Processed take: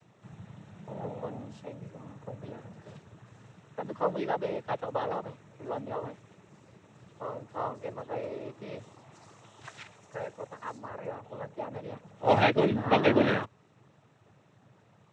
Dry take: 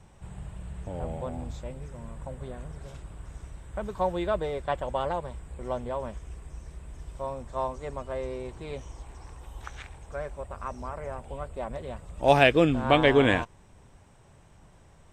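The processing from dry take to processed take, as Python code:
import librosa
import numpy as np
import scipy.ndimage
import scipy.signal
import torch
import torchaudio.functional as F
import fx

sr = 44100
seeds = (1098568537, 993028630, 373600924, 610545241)

y = fx.high_shelf(x, sr, hz=4500.0, db=fx.steps((0.0, -8.5), (9.11, 2.5), (10.77, -10.5)))
y = fx.noise_vocoder(y, sr, seeds[0], bands=12)
y = y * 10.0 ** (-2.5 / 20.0)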